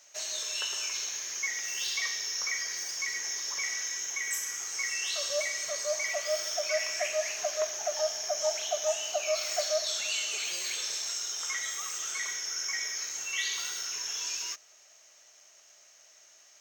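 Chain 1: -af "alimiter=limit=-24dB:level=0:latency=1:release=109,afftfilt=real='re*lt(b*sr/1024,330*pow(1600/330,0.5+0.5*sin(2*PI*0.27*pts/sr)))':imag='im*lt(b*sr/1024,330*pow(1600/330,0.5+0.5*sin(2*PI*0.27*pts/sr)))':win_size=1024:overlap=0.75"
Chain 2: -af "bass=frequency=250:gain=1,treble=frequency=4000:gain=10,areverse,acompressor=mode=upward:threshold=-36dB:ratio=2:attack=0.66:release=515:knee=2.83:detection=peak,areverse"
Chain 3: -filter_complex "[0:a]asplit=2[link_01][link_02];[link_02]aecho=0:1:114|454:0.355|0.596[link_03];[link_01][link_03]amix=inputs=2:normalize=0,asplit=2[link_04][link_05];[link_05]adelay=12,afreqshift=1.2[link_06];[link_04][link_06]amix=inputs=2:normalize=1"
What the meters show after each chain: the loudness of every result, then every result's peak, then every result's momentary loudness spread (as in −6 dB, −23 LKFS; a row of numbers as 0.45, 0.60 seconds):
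−41.5, −24.0, −32.5 LKFS; −25.5, −10.5, −18.0 dBFS; 23, 2, 3 LU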